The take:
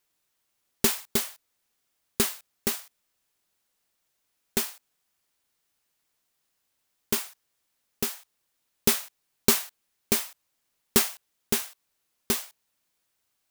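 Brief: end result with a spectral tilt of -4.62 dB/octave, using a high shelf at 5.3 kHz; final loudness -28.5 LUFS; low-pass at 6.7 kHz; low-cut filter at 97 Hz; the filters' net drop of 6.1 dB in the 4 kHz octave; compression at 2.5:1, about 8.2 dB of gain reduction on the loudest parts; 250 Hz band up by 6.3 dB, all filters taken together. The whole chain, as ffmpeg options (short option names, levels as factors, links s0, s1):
-af "highpass=97,lowpass=6700,equalizer=f=250:t=o:g=7.5,equalizer=f=4000:t=o:g=-4,highshelf=f=5300:g=-7,acompressor=threshold=0.0398:ratio=2.5,volume=2.51"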